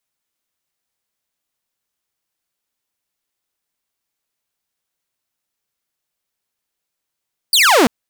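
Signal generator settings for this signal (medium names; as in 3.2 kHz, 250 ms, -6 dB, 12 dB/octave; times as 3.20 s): laser zap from 4.9 kHz, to 210 Hz, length 0.34 s saw, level -6 dB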